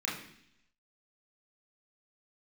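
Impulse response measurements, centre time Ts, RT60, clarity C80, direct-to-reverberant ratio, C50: 41 ms, 0.70 s, 9.0 dB, -5.5 dB, 5.0 dB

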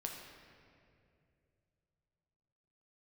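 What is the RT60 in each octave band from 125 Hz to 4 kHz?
3.9, 3.0, 2.9, 2.1, 2.1, 1.6 s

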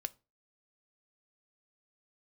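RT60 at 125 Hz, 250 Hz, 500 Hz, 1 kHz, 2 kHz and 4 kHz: 0.35, 0.35, 0.30, 0.30, 0.25, 0.25 s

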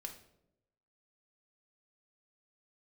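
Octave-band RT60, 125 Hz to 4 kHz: 1.1, 1.0, 1.0, 0.65, 0.55, 0.50 s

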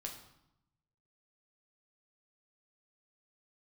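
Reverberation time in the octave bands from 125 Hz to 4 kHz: 1.4, 1.1, 0.80, 0.85, 0.70, 0.65 s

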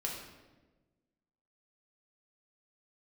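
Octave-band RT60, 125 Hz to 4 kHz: 1.6, 1.6, 1.4, 1.1, 0.95, 0.85 s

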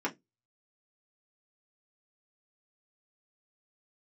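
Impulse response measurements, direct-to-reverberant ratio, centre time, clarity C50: -4.0 dB, 10 ms, 22.0 dB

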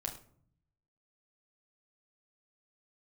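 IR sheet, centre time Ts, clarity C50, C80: 18 ms, 10.5 dB, 14.0 dB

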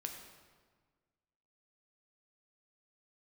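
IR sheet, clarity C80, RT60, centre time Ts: 7.0 dB, 1.5 s, 38 ms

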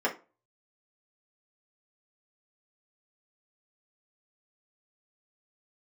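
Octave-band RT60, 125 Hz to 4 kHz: 0.35, 0.35, 0.35, 0.30, 0.25, 0.20 s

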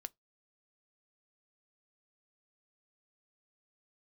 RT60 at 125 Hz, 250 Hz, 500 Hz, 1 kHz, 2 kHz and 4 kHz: 0.20, 0.20, 0.15, 0.15, 0.15, 0.15 s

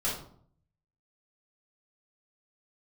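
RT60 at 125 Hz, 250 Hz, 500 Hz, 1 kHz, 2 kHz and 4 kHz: 0.95, 0.70, 0.60, 0.55, 0.40, 0.35 s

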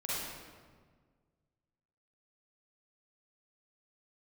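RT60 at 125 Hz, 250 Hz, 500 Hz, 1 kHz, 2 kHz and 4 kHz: 2.3, 2.0, 1.7, 1.5, 1.3, 1.0 s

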